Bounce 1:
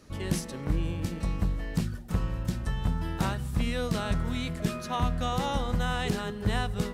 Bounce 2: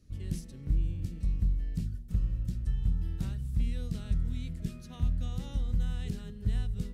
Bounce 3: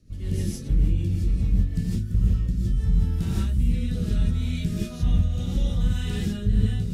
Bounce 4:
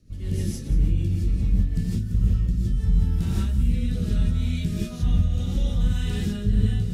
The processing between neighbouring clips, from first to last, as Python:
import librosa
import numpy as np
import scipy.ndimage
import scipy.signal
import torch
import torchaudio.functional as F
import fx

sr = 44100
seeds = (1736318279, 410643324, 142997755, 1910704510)

y1 = fx.tone_stack(x, sr, knobs='10-0-1')
y1 = y1 * librosa.db_to_amplitude(8.0)
y2 = fx.rotary_switch(y1, sr, hz=6.7, then_hz=0.7, switch_at_s=1.6)
y2 = fx.rev_gated(y2, sr, seeds[0], gate_ms=190, shape='rising', drr_db=-7.0)
y2 = y2 * librosa.db_to_amplitude(5.5)
y3 = y2 + 10.0 ** (-13.5 / 20.0) * np.pad(y2, (int(181 * sr / 1000.0), 0))[:len(y2)]